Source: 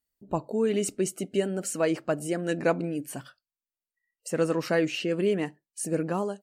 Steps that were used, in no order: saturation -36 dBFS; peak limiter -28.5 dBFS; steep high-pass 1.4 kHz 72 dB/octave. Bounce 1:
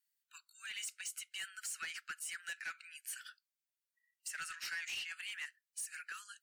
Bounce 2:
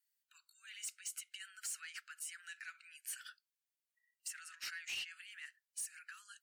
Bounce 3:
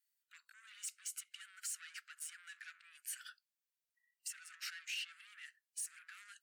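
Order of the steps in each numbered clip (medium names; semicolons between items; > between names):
steep high-pass > peak limiter > saturation; peak limiter > steep high-pass > saturation; peak limiter > saturation > steep high-pass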